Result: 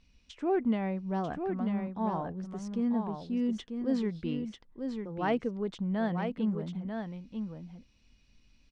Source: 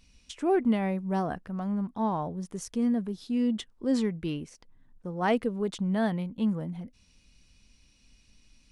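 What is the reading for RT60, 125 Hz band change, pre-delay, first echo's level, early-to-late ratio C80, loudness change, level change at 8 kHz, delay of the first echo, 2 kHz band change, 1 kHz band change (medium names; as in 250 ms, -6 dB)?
no reverb, -2.5 dB, no reverb, -6.0 dB, no reverb, -3.5 dB, under -10 dB, 943 ms, -3.5 dB, -3.0 dB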